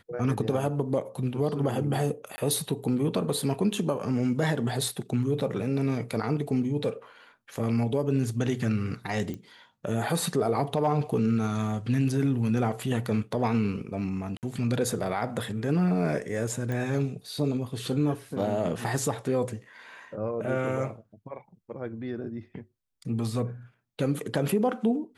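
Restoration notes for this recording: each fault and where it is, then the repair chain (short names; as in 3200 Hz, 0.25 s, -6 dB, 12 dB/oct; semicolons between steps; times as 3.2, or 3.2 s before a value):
2.36–2.38 gap 20 ms
9.34 pop -24 dBFS
14.37–14.43 gap 58 ms
16.72 pop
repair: de-click; interpolate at 2.36, 20 ms; interpolate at 14.37, 58 ms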